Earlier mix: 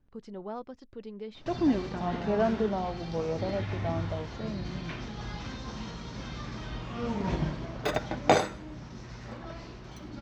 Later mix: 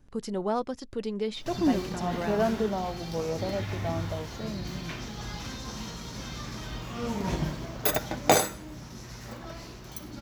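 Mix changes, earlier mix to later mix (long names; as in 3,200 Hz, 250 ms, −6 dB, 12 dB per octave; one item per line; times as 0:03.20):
speech +9.5 dB
master: remove high-frequency loss of the air 150 metres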